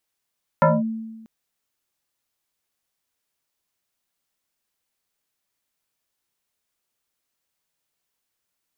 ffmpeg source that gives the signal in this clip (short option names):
-f lavfi -i "aevalsrc='0.299*pow(10,-3*t/1.21)*sin(2*PI*223*t+3.1*clip(1-t/0.21,0,1)*sin(2*PI*1.72*223*t))':d=0.64:s=44100"